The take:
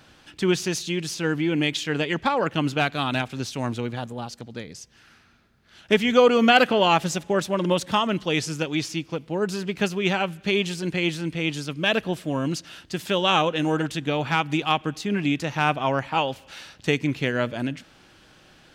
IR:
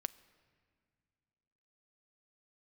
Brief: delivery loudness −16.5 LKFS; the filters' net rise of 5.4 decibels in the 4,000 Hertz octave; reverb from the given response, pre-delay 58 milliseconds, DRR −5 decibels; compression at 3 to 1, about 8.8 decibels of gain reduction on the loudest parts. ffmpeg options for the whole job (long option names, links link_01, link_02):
-filter_complex "[0:a]equalizer=frequency=4000:width_type=o:gain=7.5,acompressor=threshold=-23dB:ratio=3,asplit=2[link_01][link_02];[1:a]atrim=start_sample=2205,adelay=58[link_03];[link_02][link_03]afir=irnorm=-1:irlink=0,volume=6.5dB[link_04];[link_01][link_04]amix=inputs=2:normalize=0,volume=4.5dB"